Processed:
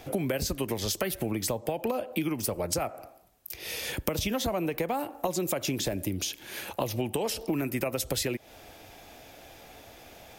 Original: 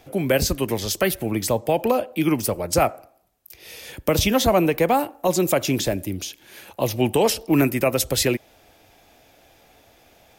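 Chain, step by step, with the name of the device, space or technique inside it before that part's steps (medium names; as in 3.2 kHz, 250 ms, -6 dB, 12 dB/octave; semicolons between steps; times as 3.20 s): serial compression, leveller first (compression 3:1, threshold -21 dBFS, peak gain reduction 6.5 dB; compression 5:1, threshold -32 dBFS, peak gain reduction 12.5 dB); trim +4.5 dB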